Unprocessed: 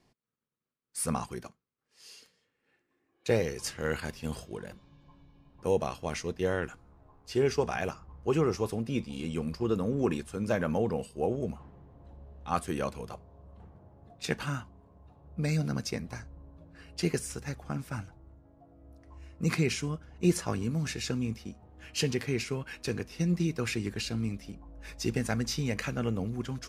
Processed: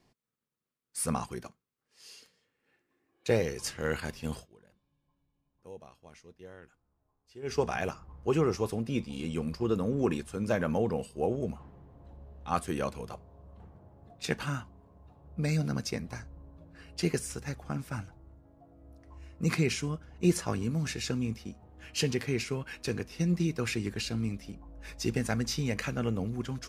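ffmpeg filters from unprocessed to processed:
ffmpeg -i in.wav -filter_complex "[0:a]asplit=3[link_01][link_02][link_03];[link_01]atrim=end=4.48,asetpts=PTS-STARTPTS,afade=type=out:start_time=4.33:duration=0.15:silence=0.105925[link_04];[link_02]atrim=start=4.48:end=7.42,asetpts=PTS-STARTPTS,volume=-19.5dB[link_05];[link_03]atrim=start=7.42,asetpts=PTS-STARTPTS,afade=type=in:duration=0.15:silence=0.105925[link_06];[link_04][link_05][link_06]concat=n=3:v=0:a=1" out.wav

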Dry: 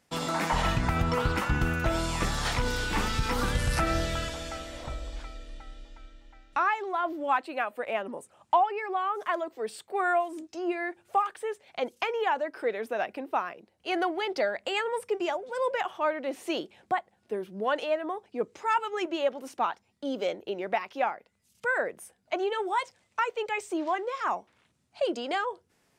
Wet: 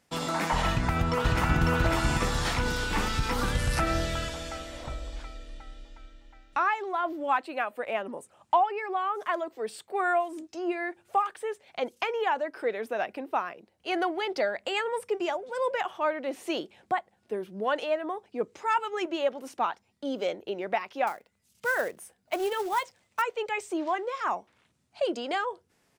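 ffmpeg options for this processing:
ffmpeg -i in.wav -filter_complex "[0:a]asplit=2[link_01][link_02];[link_02]afade=type=in:start_time=0.69:duration=0.01,afade=type=out:start_time=1.62:duration=0.01,aecho=0:1:550|1100|1650|2200|2750|3300:0.891251|0.401063|0.180478|0.0812152|0.0365469|0.0164461[link_03];[link_01][link_03]amix=inputs=2:normalize=0,asettb=1/sr,asplit=3[link_04][link_05][link_06];[link_04]atrim=end=21.074[link_07];[link_05]atrim=start=21.07:end=23.22,asetpts=PTS-STARTPTS,afade=type=in:duration=0.004:curve=qsin,afade=type=out:start_time=2.146:duration=0.004:curve=qsin,acrusher=bits=4:mode=log:mix=0:aa=0.000001[link_08];[link_06]atrim=start=23.216[link_09];[link_07][link_08]acrossfade=duration=0.004:curve1=hsin:curve2=qsin[link_10];[link_10][link_09]acrossfade=duration=0.004:curve1=qsin:curve2=hsin" out.wav

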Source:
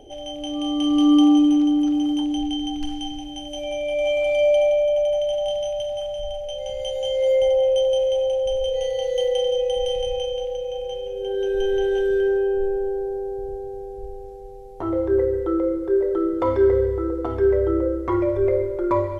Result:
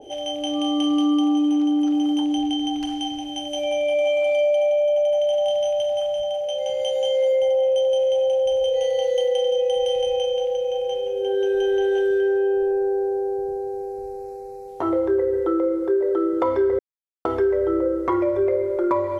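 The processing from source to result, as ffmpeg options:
ffmpeg -i in.wav -filter_complex "[0:a]asettb=1/sr,asplit=3[link_01][link_02][link_03];[link_01]atrim=end=6.224[link_04];[link_02]atrim=start=6.22:end=7.33,asetpts=PTS-STARTPTS,afade=type=in:duration=0.004:curve=qsin,afade=type=out:start_time=1.106:duration=0.004:curve=qsin,highpass=110[link_05];[link_03]atrim=start=7.326[link_06];[link_04][link_05]acrossfade=duration=0.004:curve1=hsin:curve2=qsin[link_07];[link_07][link_06]acrossfade=duration=0.004:curve1=qsin:curve2=hsin,asettb=1/sr,asplit=3[link_08][link_09][link_10];[link_08]atrim=end=12.714[link_11];[link_09]atrim=start=12.71:end=14.68,asetpts=PTS-STARTPTS,afade=type=in:duration=0.004:curve=qsin,afade=type=out:start_time=1.966:duration=0.004:curve=qsin,asuperstop=centerf=3200:order=12:qfactor=2.7[link_12];[link_10]atrim=start=14.676[link_13];[link_11][link_12]acrossfade=duration=0.004:curve1=hsin:curve2=qsin[link_14];[link_14][link_13]acrossfade=duration=0.004:curve1=qsin:curve2=hsin,asplit=3[link_15][link_16][link_17];[link_15]atrim=end=16.79,asetpts=PTS-STARTPTS,afade=type=out:start_time=16.786:duration=0.004:curve=hsin[link_18];[link_16]atrim=start=16.79:end=17.25,asetpts=PTS-STARTPTS,volume=0[link_19];[link_17]atrim=start=17.25,asetpts=PTS-STARTPTS,afade=type=in:duration=0.004:curve=hsin[link_20];[link_18][link_19][link_20]concat=n=3:v=0:a=1,highpass=frequency=360:poles=1,acompressor=threshold=-24dB:ratio=5,adynamicequalizer=threshold=0.00794:dfrequency=1700:dqfactor=0.7:tfrequency=1700:tqfactor=0.7:attack=5:release=100:ratio=0.375:range=2:mode=cutabove:tftype=highshelf,volume=6.5dB" out.wav

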